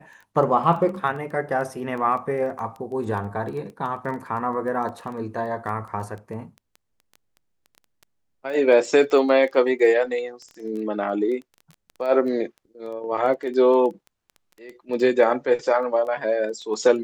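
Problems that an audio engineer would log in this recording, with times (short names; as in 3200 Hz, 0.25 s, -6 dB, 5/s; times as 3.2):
crackle 10/s -31 dBFS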